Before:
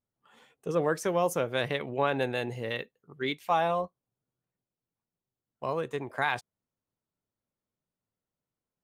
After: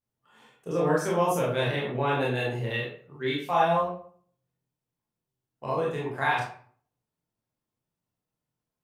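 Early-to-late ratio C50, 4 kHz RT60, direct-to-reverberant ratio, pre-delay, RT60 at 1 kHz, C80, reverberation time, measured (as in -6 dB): 2.5 dB, 0.35 s, -5.5 dB, 22 ms, 0.50 s, 8.0 dB, 0.50 s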